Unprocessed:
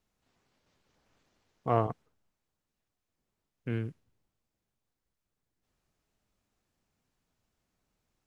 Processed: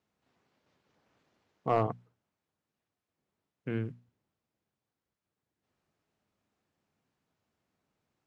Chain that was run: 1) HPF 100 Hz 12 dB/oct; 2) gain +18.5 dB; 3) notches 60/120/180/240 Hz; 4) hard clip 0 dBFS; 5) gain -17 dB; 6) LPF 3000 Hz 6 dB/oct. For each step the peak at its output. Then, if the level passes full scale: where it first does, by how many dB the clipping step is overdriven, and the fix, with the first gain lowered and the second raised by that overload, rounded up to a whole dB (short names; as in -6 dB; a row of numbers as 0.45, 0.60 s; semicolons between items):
-12.5, +6.0, +6.0, 0.0, -17.0, -17.0 dBFS; step 2, 6.0 dB; step 2 +12.5 dB, step 5 -11 dB